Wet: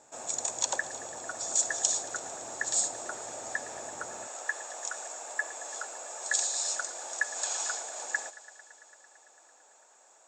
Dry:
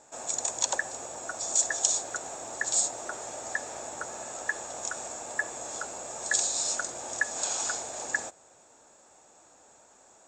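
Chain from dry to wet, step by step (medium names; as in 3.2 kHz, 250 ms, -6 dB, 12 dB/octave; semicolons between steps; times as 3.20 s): high-pass 65 Hz 12 dB/octave, from 4.27 s 520 Hz; thinning echo 112 ms, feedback 83%, high-pass 200 Hz, level -19 dB; trim -2 dB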